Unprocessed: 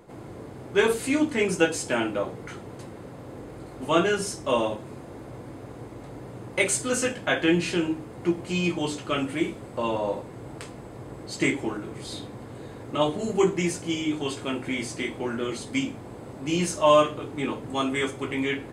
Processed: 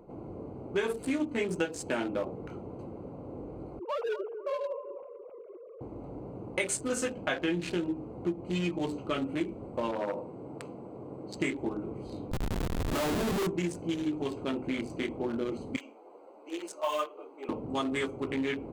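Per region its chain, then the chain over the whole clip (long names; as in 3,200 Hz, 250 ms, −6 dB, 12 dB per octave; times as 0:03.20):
0:03.79–0:05.81: three sine waves on the formant tracks + downward compressor 2.5 to 1, threshold −30 dBFS + delay with a band-pass on its return 249 ms, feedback 33%, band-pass 710 Hz, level −9.5 dB
0:09.91–0:11.34: high-pass filter 140 Hz + flutter between parallel walls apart 7.6 metres, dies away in 0.23 s + saturating transformer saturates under 970 Hz
0:12.31–0:13.47: low-pass filter 2,700 Hz + comparator with hysteresis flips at −36 dBFS
0:15.76–0:17.49: Bessel high-pass filter 570 Hz, order 6 + log-companded quantiser 6 bits + string-ensemble chorus
whole clip: adaptive Wiener filter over 25 samples; parametric band 120 Hz −6.5 dB 0.36 octaves; downward compressor 4 to 1, threshold −28 dBFS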